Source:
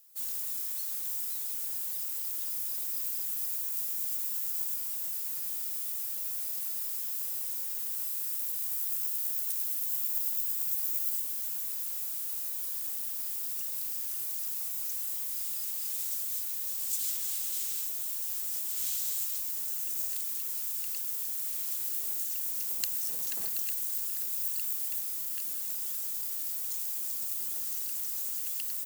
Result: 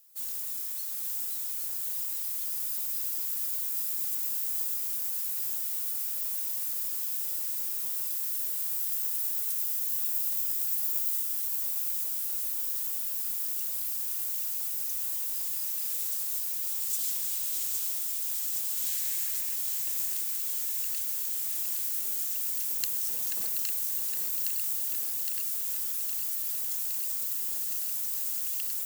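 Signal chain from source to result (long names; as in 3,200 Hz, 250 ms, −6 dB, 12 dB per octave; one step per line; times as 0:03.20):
0:18.88–0:19.54: noise in a band 1,600–2,800 Hz −55 dBFS
feedback echo with a high-pass in the loop 814 ms, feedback 75%, high-pass 170 Hz, level −5 dB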